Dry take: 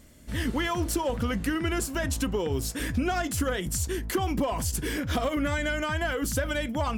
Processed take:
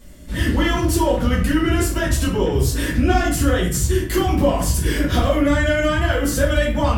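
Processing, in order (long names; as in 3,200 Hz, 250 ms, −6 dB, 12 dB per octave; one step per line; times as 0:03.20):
rectangular room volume 55 cubic metres, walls mixed, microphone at 1.6 metres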